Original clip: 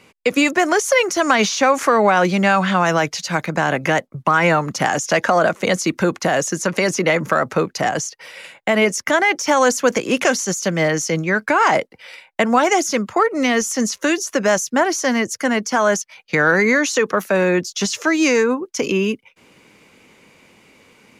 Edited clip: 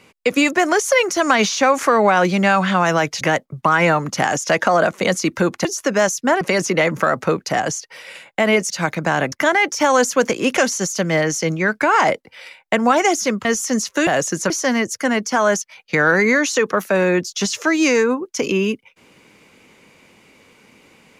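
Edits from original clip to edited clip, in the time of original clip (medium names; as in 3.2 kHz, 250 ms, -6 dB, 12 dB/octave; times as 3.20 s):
3.21–3.83 s: move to 8.99 s
6.27–6.70 s: swap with 14.14–14.90 s
13.12–13.52 s: delete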